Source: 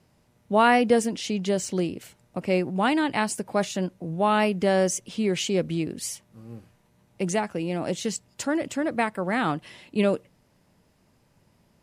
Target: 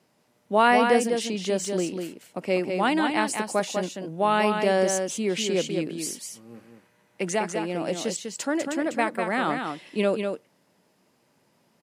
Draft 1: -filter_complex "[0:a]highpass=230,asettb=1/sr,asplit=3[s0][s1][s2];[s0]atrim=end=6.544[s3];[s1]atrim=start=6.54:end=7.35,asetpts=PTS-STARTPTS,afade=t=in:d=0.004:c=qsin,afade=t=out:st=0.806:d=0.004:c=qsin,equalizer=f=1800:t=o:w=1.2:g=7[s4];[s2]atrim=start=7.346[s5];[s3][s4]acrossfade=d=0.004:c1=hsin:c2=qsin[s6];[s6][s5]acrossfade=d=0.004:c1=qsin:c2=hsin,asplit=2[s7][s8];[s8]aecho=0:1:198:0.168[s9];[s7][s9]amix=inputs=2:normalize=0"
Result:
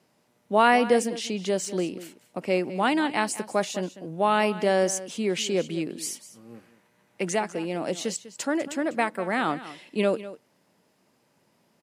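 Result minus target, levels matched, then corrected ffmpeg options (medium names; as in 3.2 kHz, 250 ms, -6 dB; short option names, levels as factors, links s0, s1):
echo-to-direct -10 dB
-filter_complex "[0:a]highpass=230,asettb=1/sr,asplit=3[s0][s1][s2];[s0]atrim=end=6.544[s3];[s1]atrim=start=6.54:end=7.35,asetpts=PTS-STARTPTS,afade=t=in:d=0.004:c=qsin,afade=t=out:st=0.806:d=0.004:c=qsin,equalizer=f=1800:t=o:w=1.2:g=7[s4];[s2]atrim=start=7.346[s5];[s3][s4]acrossfade=d=0.004:c1=hsin:c2=qsin[s6];[s6][s5]acrossfade=d=0.004:c1=qsin:c2=hsin,asplit=2[s7][s8];[s8]aecho=0:1:198:0.531[s9];[s7][s9]amix=inputs=2:normalize=0"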